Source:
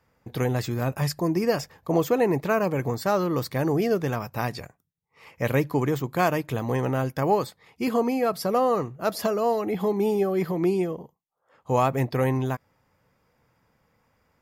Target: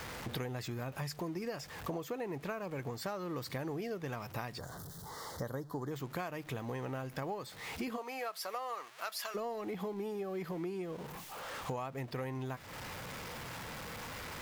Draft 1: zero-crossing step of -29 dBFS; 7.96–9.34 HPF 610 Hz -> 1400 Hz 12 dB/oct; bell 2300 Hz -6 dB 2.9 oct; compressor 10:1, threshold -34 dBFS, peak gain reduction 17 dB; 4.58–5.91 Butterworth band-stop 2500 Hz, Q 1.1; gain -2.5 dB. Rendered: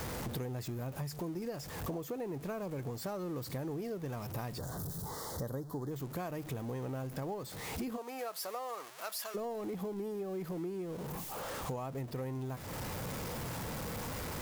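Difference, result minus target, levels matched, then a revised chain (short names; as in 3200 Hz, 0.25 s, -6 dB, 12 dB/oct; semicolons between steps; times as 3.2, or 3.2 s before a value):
zero-crossing step: distortion +8 dB; 2000 Hz band -4.5 dB
zero-crossing step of -38 dBFS; 7.96–9.34 HPF 610 Hz -> 1400 Hz 12 dB/oct; bell 2300 Hz +4 dB 2.9 oct; compressor 10:1, threshold -34 dBFS, peak gain reduction 19.5 dB; 4.58–5.91 Butterworth band-stop 2500 Hz, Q 1.1; gain -2.5 dB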